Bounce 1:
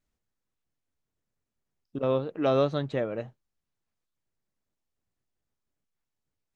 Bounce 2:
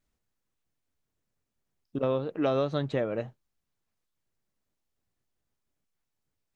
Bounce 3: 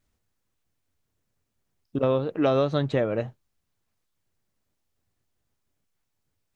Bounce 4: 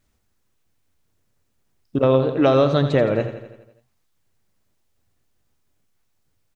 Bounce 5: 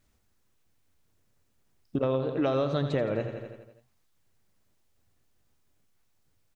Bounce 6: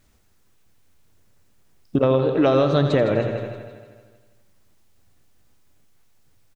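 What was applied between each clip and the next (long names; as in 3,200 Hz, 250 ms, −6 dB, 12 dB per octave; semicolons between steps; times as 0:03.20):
downward compressor, threshold −25 dBFS, peak gain reduction 6.5 dB; level +2 dB
parametric band 94 Hz +5.5 dB 0.53 octaves; level +4.5 dB
repeating echo 84 ms, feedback 58%, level −10.5 dB; level +6 dB
downward compressor 2.5 to 1, threshold −27 dBFS, peak gain reduction 10.5 dB; level −1.5 dB
repeating echo 158 ms, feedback 57%, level −12 dB; level +9 dB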